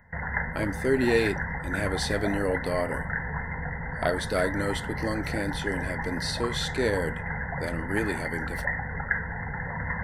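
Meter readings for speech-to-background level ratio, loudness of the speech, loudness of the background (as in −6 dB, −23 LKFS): 2.0 dB, −30.0 LKFS, −32.0 LKFS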